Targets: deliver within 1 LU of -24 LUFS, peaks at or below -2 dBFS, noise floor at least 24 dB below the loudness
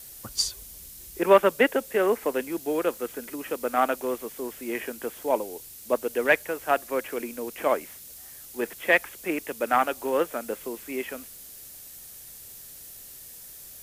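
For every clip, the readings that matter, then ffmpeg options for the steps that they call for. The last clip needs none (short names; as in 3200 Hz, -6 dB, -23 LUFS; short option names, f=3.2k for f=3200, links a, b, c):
noise floor -45 dBFS; noise floor target -51 dBFS; loudness -26.5 LUFS; peak -5.5 dBFS; loudness target -24.0 LUFS
-> -af "afftdn=nr=6:nf=-45"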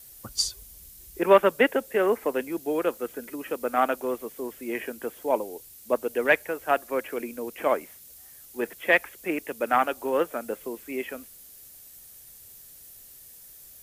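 noise floor -49 dBFS; noise floor target -51 dBFS
-> -af "afftdn=nr=6:nf=-49"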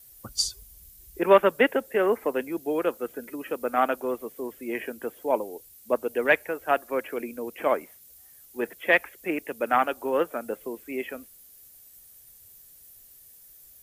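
noise floor -52 dBFS; loudness -27.0 LUFS; peak -5.5 dBFS; loudness target -24.0 LUFS
-> -af "volume=3dB"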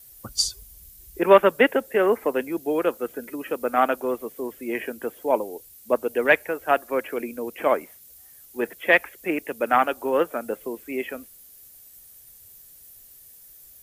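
loudness -24.0 LUFS; peak -2.5 dBFS; noise floor -49 dBFS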